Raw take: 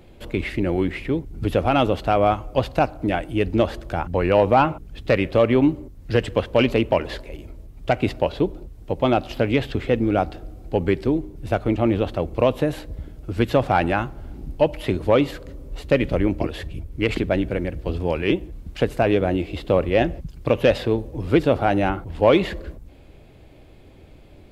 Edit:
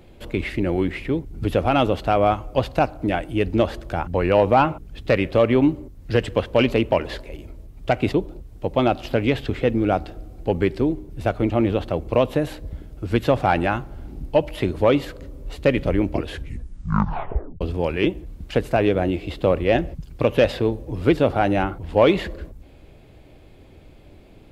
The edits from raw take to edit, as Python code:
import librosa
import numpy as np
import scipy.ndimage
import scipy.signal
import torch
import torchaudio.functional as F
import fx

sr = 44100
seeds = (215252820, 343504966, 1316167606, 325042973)

y = fx.edit(x, sr, fx.cut(start_s=8.13, length_s=0.26),
    fx.tape_stop(start_s=16.52, length_s=1.35), tone=tone)